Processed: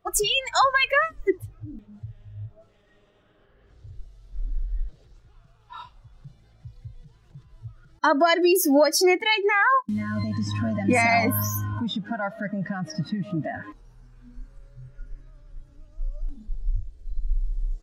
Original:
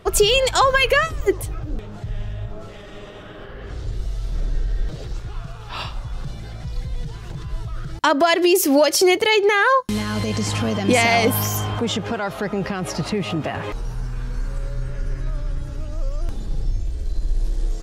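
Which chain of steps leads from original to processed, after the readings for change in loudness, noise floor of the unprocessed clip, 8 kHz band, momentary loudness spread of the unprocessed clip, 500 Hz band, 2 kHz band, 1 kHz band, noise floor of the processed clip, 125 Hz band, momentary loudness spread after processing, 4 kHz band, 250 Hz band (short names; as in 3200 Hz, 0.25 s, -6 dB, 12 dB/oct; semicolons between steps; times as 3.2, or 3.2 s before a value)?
-2.0 dB, -36 dBFS, -5.0 dB, 18 LU, -5.5 dB, -3.0 dB, -3.0 dB, -59 dBFS, -6.0 dB, 22 LU, -5.5 dB, -3.0 dB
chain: spectral noise reduction 21 dB; gain -2.5 dB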